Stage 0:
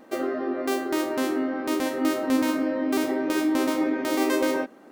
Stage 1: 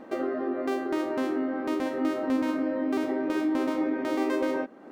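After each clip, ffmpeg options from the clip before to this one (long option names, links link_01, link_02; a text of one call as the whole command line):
ffmpeg -i in.wav -af "acompressor=threshold=-43dB:ratio=1.5,lowpass=frequency=1900:poles=1,volume=5dB" out.wav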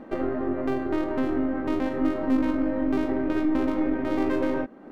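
ffmpeg -i in.wav -af "aeval=exprs='0.158*(cos(1*acos(clip(val(0)/0.158,-1,1)))-cos(1*PI/2))+0.01*(cos(6*acos(clip(val(0)/0.158,-1,1)))-cos(6*PI/2))':channel_layout=same,bass=frequency=250:gain=8,treble=frequency=4000:gain=-7" out.wav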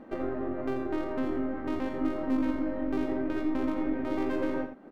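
ffmpeg -i in.wav -af "aecho=1:1:85:0.355,volume=-5.5dB" out.wav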